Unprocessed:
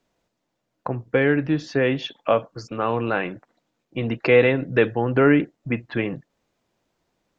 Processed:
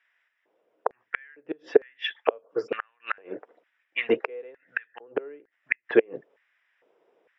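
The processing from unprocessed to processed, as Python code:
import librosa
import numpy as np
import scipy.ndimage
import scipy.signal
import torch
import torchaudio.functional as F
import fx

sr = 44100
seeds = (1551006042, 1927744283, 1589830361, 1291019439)

y = fx.gate_flip(x, sr, shuts_db=-12.0, range_db=-37)
y = scipy.signal.savgol_filter(y, 25, 4, mode='constant')
y = fx.filter_lfo_highpass(y, sr, shape='square', hz=1.1, low_hz=440.0, high_hz=1800.0, q=4.8)
y = y * librosa.db_to_amplitude(3.0)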